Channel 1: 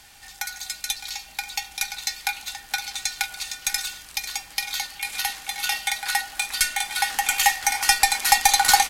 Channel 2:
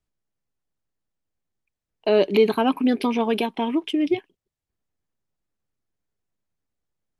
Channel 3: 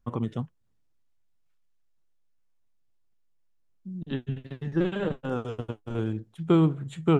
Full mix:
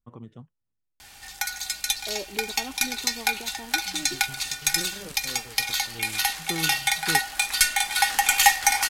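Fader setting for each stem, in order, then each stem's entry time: +2.0, −18.0, −13.0 decibels; 1.00, 0.00, 0.00 seconds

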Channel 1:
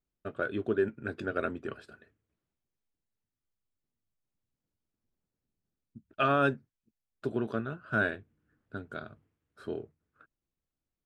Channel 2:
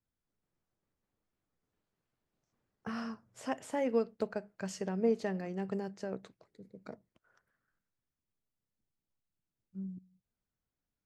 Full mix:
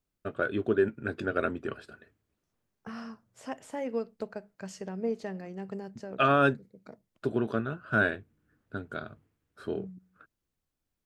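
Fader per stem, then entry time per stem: +3.0, −2.0 decibels; 0.00, 0.00 seconds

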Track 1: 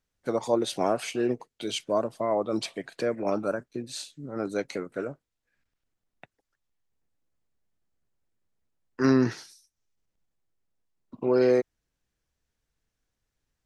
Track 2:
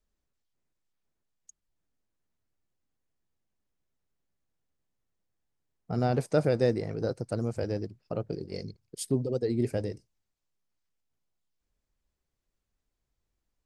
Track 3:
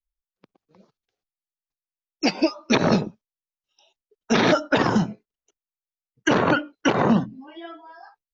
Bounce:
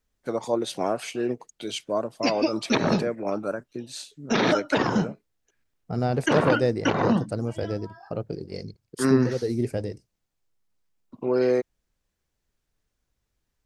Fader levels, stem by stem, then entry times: −0.5, +2.0, −3.5 decibels; 0.00, 0.00, 0.00 seconds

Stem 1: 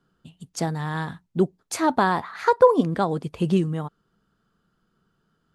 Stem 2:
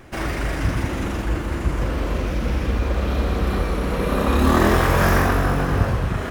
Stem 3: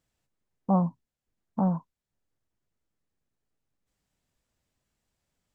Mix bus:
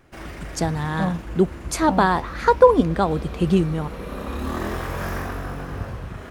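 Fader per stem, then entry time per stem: +2.5, −11.0, −1.5 decibels; 0.00, 0.00, 0.30 seconds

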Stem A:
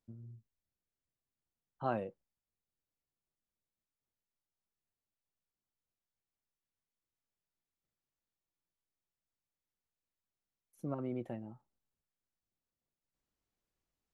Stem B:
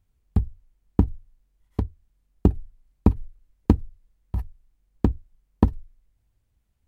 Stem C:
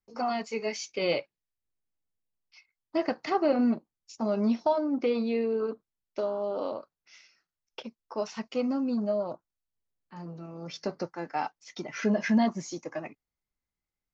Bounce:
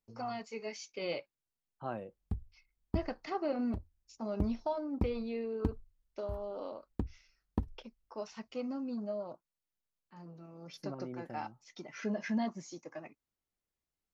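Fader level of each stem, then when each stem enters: −4.5, −15.5, −9.5 decibels; 0.00, 1.95, 0.00 seconds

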